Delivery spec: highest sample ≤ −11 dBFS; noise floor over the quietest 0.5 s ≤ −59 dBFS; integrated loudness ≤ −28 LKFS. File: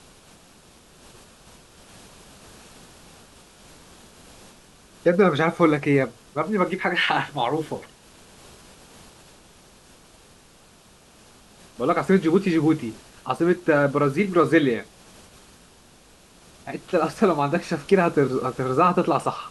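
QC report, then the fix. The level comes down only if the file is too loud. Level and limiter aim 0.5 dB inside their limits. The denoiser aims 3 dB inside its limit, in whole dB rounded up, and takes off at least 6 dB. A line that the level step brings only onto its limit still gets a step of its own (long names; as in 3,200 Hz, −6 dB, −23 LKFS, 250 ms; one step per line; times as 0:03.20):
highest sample −4.5 dBFS: out of spec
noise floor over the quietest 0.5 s −53 dBFS: out of spec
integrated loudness −22.0 LKFS: out of spec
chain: level −6.5 dB
brickwall limiter −11.5 dBFS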